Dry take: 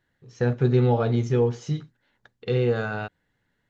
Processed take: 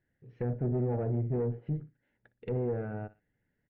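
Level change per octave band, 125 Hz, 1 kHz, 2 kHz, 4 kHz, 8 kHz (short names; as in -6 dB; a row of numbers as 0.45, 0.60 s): -8.5 dB, -13.0 dB, -18.5 dB, under -25 dB, n/a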